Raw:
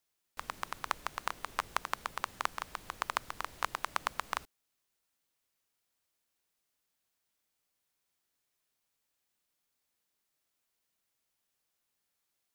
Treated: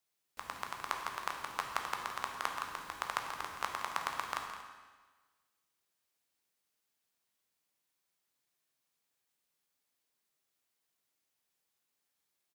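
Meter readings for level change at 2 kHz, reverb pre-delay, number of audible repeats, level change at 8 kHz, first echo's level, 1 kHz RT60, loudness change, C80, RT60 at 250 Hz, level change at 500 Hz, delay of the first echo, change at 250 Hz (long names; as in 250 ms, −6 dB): −1.0 dB, 11 ms, 2, −1.0 dB, −11.5 dB, 1.4 s, −1.0 dB, 5.0 dB, 1.4 s, −1.0 dB, 167 ms, −1.0 dB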